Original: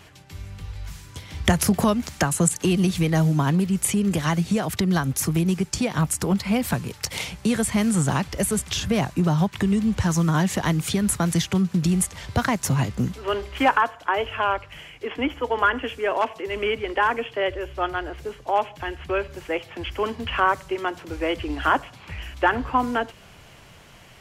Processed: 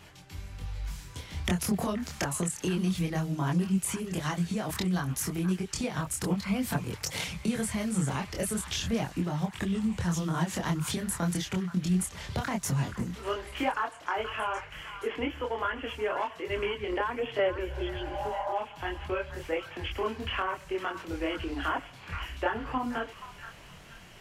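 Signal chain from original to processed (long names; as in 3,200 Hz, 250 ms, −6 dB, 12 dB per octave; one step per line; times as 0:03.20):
healed spectral selection 0:17.71–0:18.50, 440–2,200 Hz both
downward compressor 3 to 1, threshold −26 dBFS, peak gain reduction 10.5 dB
multi-voice chorus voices 6, 1.2 Hz, delay 25 ms, depth 3.5 ms
on a send: echo through a band-pass that steps 476 ms, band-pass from 1,400 Hz, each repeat 0.7 octaves, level −9.5 dB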